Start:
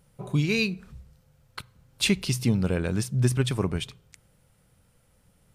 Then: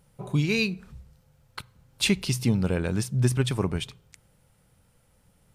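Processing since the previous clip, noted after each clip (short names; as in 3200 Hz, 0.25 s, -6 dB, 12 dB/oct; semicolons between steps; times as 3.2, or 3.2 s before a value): bell 870 Hz +3 dB 0.25 oct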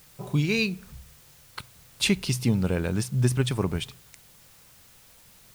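added noise white -55 dBFS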